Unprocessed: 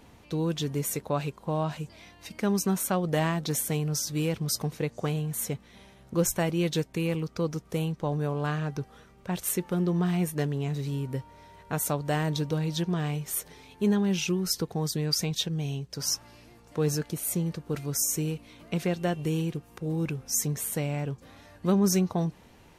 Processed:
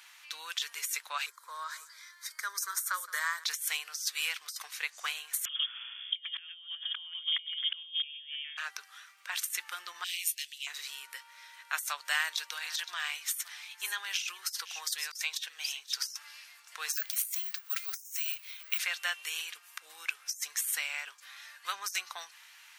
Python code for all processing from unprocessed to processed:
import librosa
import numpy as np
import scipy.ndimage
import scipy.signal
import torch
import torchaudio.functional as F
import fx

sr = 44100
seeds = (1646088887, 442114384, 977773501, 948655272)

y = fx.chain(x, sr, fx.steep_highpass(hz=360.0, slope=48),
    fx.fixed_phaser(hz=740.0, stages=6),
    fx.echo_single(ms=170, db=-18.0), at=(1.26, 3.44))
y = fx.chain(y, sr, fx.echo_single(ms=100, db=-6.5),
    fx.freq_invert(carrier_hz=3400), at=(5.45, 8.57))
y = fx.chain(y, sr, fx.steep_highpass(hz=2500.0, slope=36),
    fx.band_squash(depth_pct=40), at=(10.04, 10.67))
y = fx.chain(y, sr, fx.highpass(hz=300.0, slope=12),
    fx.echo_single(ms=517, db=-18.0), at=(12.1, 16.11))
y = fx.chain(y, sr, fx.highpass(hz=1400.0, slope=6),
    fx.resample_bad(factor=2, down='filtered', up='zero_stuff'), at=(16.93, 18.79))
y = scipy.signal.sosfilt(scipy.signal.butter(4, 1400.0, 'highpass', fs=sr, output='sos'), y)
y = fx.over_compress(y, sr, threshold_db=-36.0, ratio=-0.5)
y = F.gain(torch.from_numpy(y), 2.5).numpy()